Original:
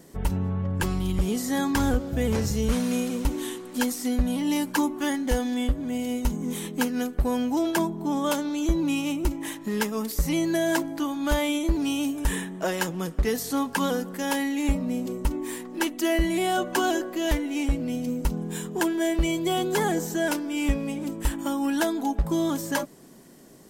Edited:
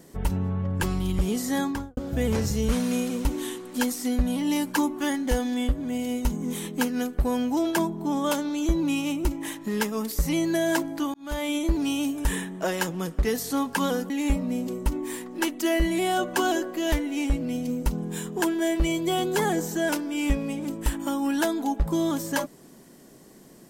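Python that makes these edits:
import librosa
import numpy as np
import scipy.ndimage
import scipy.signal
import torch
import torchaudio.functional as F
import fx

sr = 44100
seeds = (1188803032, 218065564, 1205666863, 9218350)

y = fx.studio_fade_out(x, sr, start_s=1.56, length_s=0.41)
y = fx.edit(y, sr, fx.fade_in_span(start_s=11.14, length_s=0.44),
    fx.cut(start_s=14.1, length_s=0.39), tone=tone)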